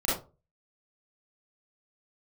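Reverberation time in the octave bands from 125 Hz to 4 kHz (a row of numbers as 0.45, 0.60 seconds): 0.45, 0.35, 0.35, 0.30, 0.20, 0.20 seconds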